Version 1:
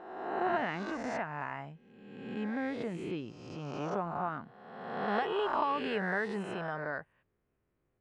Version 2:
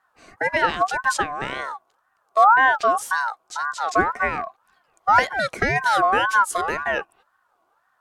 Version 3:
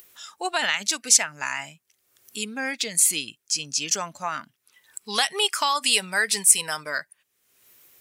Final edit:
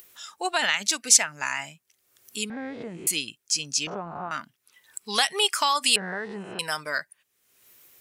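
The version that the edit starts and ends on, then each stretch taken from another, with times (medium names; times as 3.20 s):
3
2.50–3.07 s: from 1
3.87–4.31 s: from 1
5.96–6.59 s: from 1
not used: 2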